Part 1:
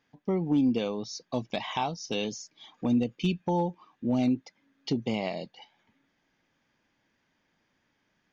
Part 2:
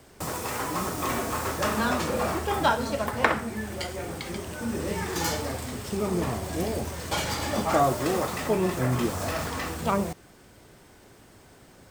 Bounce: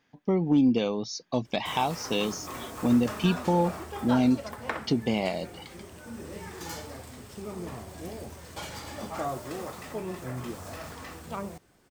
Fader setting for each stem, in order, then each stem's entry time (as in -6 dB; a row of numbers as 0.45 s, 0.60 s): +3.0 dB, -10.5 dB; 0.00 s, 1.45 s